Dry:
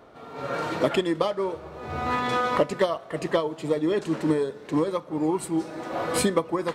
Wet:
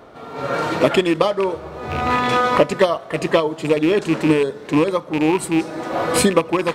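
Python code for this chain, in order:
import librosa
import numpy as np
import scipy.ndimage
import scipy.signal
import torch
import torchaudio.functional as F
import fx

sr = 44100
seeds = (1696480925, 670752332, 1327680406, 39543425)

y = fx.rattle_buzz(x, sr, strikes_db=-32.0, level_db=-24.0)
y = y * librosa.db_to_amplitude(7.5)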